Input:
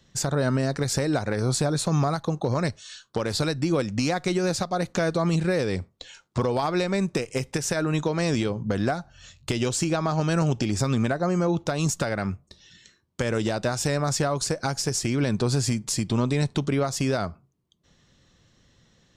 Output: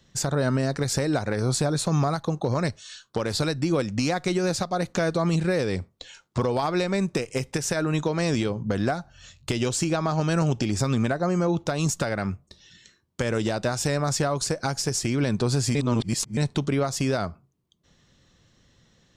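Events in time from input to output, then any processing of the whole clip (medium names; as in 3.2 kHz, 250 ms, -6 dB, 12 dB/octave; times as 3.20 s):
15.75–16.37 s: reverse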